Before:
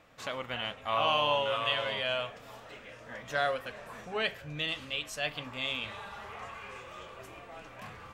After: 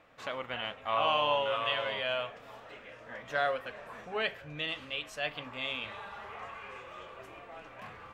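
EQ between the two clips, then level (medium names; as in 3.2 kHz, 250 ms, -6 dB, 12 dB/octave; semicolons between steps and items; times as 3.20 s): tone controls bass -5 dB, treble -9 dB; 0.0 dB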